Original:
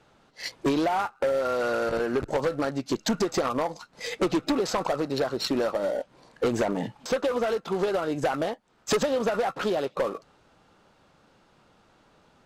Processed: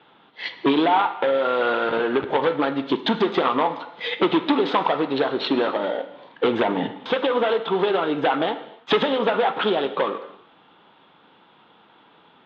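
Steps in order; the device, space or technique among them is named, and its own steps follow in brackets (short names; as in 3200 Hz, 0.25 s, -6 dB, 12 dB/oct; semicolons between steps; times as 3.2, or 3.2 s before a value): kitchen radio (speaker cabinet 210–4000 Hz, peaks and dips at 580 Hz -6 dB, 920 Hz +5 dB, 3400 Hz +10 dB); band shelf 7400 Hz -11.5 dB; non-linear reverb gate 0.33 s falling, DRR 9 dB; gain +6 dB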